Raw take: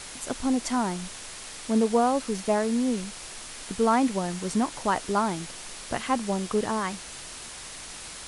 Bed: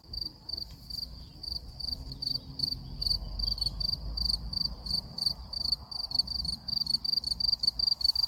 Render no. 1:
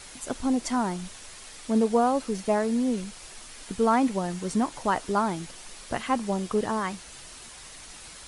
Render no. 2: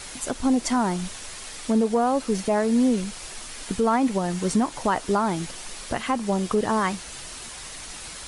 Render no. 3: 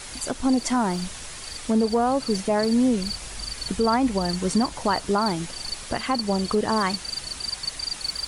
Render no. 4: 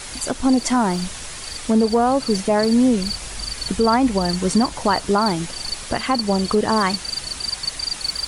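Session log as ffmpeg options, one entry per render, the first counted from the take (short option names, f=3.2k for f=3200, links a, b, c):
-af "afftdn=nr=6:nf=-41"
-af "acontrast=70,alimiter=limit=-13dB:level=0:latency=1:release=247"
-filter_complex "[1:a]volume=-3dB[a];[0:a][a]amix=inputs=2:normalize=0"
-af "volume=4.5dB"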